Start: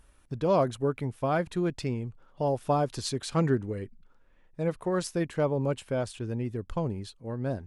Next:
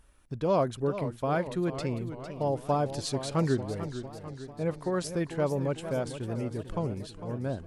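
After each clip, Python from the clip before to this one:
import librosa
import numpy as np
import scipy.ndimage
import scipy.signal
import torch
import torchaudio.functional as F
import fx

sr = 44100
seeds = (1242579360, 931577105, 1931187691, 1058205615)

y = fx.echo_warbled(x, sr, ms=448, feedback_pct=59, rate_hz=2.8, cents=167, wet_db=-11.0)
y = y * 10.0 ** (-1.5 / 20.0)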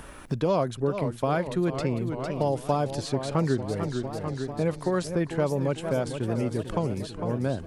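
y = fx.band_squash(x, sr, depth_pct=70)
y = y * 10.0 ** (3.0 / 20.0)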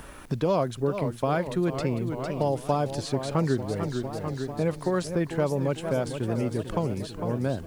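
y = fx.quant_dither(x, sr, seeds[0], bits=10, dither='none')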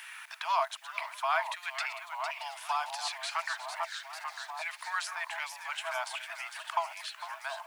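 y = fx.reverse_delay(x, sr, ms=265, wet_db=-12.0)
y = fx.filter_lfo_highpass(y, sr, shape='saw_down', hz=1.3, low_hz=950.0, high_hz=2000.0, q=1.8)
y = scipy.signal.sosfilt(scipy.signal.cheby1(6, 6, 640.0, 'highpass', fs=sr, output='sos'), y)
y = y * 10.0 ** (4.5 / 20.0)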